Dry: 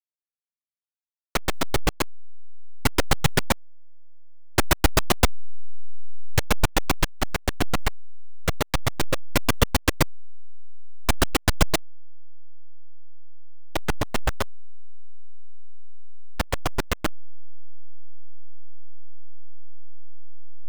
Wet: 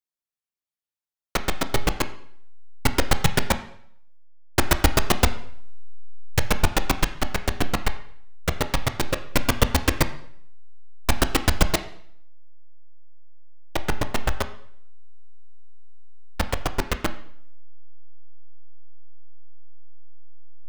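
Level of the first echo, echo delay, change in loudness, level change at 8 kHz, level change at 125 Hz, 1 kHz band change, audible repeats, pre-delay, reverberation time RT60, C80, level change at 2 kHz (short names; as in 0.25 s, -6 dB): none, none, +0.5 dB, 0.0 dB, +0.5 dB, +0.5 dB, none, 8 ms, 0.65 s, 15.5 dB, +0.5 dB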